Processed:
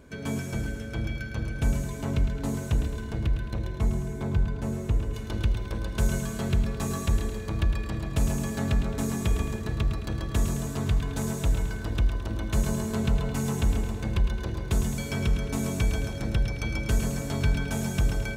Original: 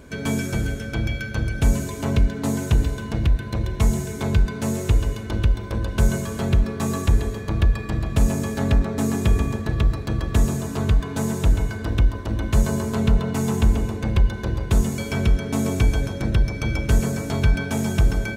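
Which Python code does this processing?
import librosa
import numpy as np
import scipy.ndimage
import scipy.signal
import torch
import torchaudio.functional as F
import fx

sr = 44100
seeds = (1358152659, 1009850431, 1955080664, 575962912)

y = fx.high_shelf(x, sr, hz=2100.0, db=fx.steps((0.0, -2.0), (3.78, -9.5), (5.13, 3.5)))
y = fx.echo_feedback(y, sr, ms=108, feedback_pct=52, wet_db=-9)
y = F.gain(torch.from_numpy(y), -7.0).numpy()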